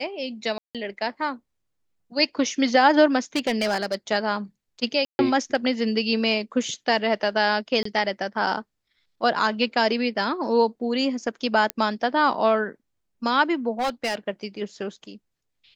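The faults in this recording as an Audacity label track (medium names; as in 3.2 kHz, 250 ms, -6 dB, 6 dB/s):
0.580000	0.750000	dropout 167 ms
3.360000	3.950000	clipped -18.5 dBFS
5.050000	5.190000	dropout 140 ms
7.830000	7.850000	dropout 24 ms
11.700000	11.700000	pop -8 dBFS
13.790000	14.150000	clipped -20.5 dBFS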